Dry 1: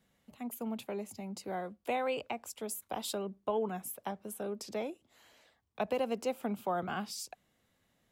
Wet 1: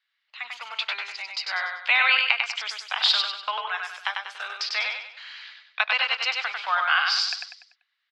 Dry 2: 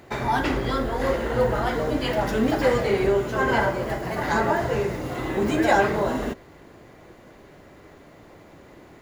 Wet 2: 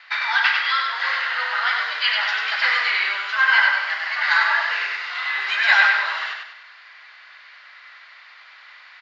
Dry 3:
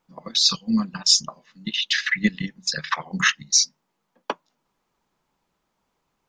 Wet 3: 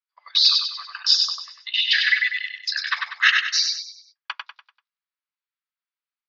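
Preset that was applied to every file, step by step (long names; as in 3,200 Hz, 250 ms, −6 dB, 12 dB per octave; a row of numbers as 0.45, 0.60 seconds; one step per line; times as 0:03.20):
high-pass filter 1,400 Hz 24 dB per octave
noise gate with hold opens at −56 dBFS
Chebyshev low-pass filter 4,700 Hz, order 4
on a send: repeating echo 97 ms, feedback 41%, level −4 dB
on the sum: normalise the peak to −3 dBFS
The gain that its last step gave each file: +23.0, +12.0, +4.0 decibels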